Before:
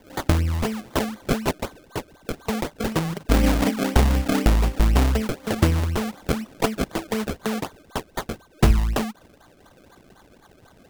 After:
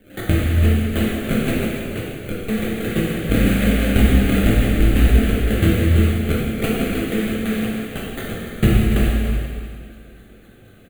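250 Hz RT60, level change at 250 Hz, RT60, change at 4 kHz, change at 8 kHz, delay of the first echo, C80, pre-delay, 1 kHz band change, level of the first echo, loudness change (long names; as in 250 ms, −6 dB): 2.1 s, +6.0 dB, 2.1 s, +2.5 dB, 0.0 dB, 288 ms, −0.5 dB, 5 ms, −3.5 dB, −9.0 dB, +4.5 dB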